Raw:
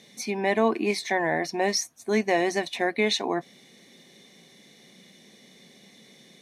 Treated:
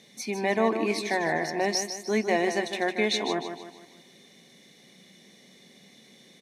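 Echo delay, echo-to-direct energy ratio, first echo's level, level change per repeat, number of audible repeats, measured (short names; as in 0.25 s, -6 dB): 0.153 s, -7.0 dB, -8.0 dB, -7.5 dB, 4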